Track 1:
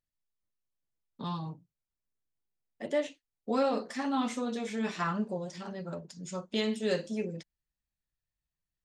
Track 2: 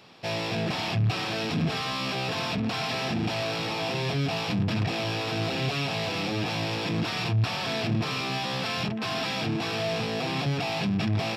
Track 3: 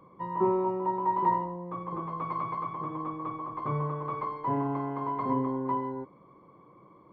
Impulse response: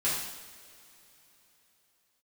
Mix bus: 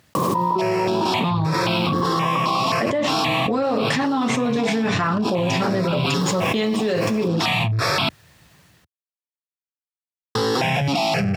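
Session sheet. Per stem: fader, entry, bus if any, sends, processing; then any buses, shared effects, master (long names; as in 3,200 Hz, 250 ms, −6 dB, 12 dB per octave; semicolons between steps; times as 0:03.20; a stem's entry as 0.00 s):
−0.5 dB, 0.00 s, no send, automatic gain control gain up to 5 dB; high-shelf EQ 5,600 Hz −11 dB
−10.0 dB, 0.35 s, muted 0:08.09–0:10.35, no send, step-sequenced phaser 3.8 Hz 440–1,800 Hz
−17.0 dB, 0.15 s, no send, Butterworth low-pass 1,500 Hz; bit reduction 11 bits; envelope flattener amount 100%; automatic ducking −9 dB, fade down 0.30 s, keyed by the first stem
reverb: not used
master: high-pass filter 88 Hz 24 dB per octave; envelope flattener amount 100%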